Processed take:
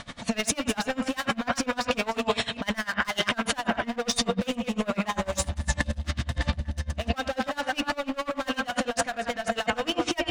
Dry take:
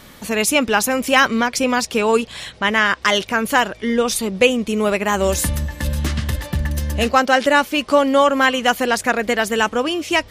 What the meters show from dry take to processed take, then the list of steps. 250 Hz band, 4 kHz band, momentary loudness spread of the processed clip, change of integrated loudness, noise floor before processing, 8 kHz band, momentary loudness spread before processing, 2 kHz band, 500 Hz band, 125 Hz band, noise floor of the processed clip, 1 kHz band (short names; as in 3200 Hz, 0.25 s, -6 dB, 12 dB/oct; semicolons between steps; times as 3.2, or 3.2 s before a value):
-9.0 dB, -8.0 dB, 4 LU, -10.5 dB, -43 dBFS, -8.5 dB, 8 LU, -11.5 dB, -12.5 dB, -7.5 dB, -48 dBFS, -11.5 dB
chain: reverse delay 0.198 s, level -9.5 dB; analogue delay 78 ms, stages 2048, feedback 70%, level -17 dB; downsampling 22050 Hz; air absorption 50 m; notches 50/100/150/200/250/300/350/400/450 Hz; overloaded stage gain 18 dB; bell 400 Hz -13 dB 0.32 oct; small resonant body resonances 690/3700 Hz, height 10 dB, ringing for 0.1 s; negative-ratio compressor -27 dBFS, ratio -1; dB-linear tremolo 10 Hz, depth 24 dB; gain +4 dB